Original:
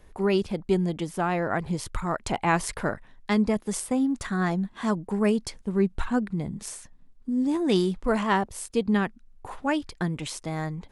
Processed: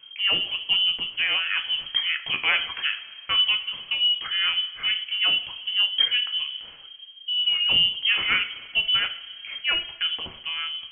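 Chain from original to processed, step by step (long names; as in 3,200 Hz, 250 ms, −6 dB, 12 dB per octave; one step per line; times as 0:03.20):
voice inversion scrambler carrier 3,200 Hz
coupled-rooms reverb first 0.45 s, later 2.7 s, from −18 dB, DRR 5.5 dB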